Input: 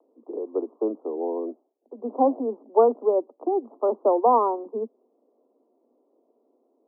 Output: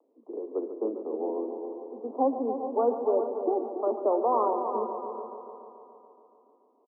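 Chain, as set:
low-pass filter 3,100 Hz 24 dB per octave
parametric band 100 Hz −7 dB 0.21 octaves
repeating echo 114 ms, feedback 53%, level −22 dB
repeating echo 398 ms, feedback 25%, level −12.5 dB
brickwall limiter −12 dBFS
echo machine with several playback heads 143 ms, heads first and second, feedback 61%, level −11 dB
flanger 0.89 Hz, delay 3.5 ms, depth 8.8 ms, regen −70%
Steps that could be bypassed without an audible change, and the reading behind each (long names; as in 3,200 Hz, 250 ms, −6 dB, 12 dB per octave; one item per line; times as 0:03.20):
low-pass filter 3,100 Hz: nothing at its input above 1,300 Hz
parametric band 100 Hz: nothing at its input below 200 Hz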